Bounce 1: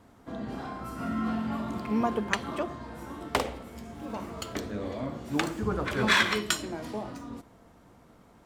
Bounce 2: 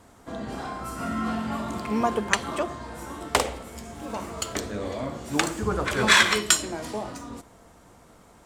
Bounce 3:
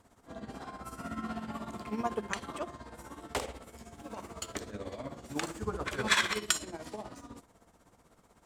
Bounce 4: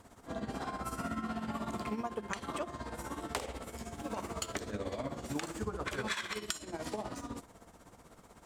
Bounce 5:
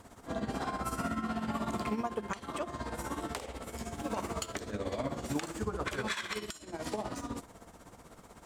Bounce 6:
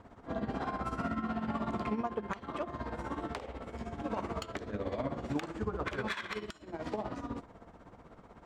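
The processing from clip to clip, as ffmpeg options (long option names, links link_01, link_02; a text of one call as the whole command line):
ffmpeg -i in.wav -af "equalizer=frequency=125:width_type=o:width=1:gain=-3,equalizer=frequency=250:width_type=o:width=1:gain=-4,equalizer=frequency=8000:width_type=o:width=1:gain=8,volume=5dB" out.wav
ffmpeg -i in.wav -af "tremolo=f=16:d=0.68,volume=-7dB" out.wav
ffmpeg -i in.wav -af "acompressor=threshold=-39dB:ratio=16,volume=6dB" out.wav
ffmpeg -i in.wav -af "alimiter=level_in=1.5dB:limit=-24dB:level=0:latency=1:release=449,volume=-1.5dB,volume=3.5dB" out.wav
ffmpeg -i in.wav -af "adynamicsmooth=sensitivity=3:basefreq=2700" out.wav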